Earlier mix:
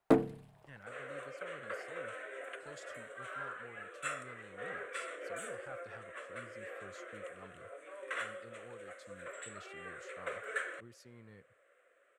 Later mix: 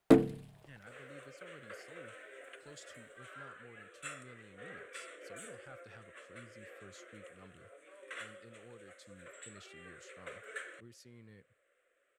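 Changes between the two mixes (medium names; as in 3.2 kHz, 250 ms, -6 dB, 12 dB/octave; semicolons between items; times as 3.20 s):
first sound +4.5 dB; second sound -4.0 dB; master: add FFT filter 320 Hz 0 dB, 910 Hz -7 dB, 3.3 kHz +2 dB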